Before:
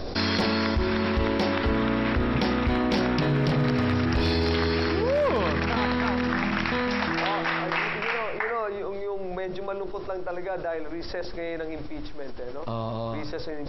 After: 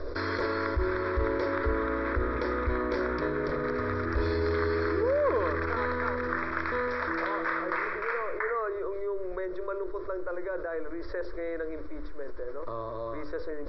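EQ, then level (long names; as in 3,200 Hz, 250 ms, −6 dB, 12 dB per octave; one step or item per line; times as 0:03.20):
low-pass filter 2,800 Hz 12 dB per octave
parametric band 130 Hz −14 dB 0.63 octaves
phaser with its sweep stopped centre 770 Hz, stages 6
0.0 dB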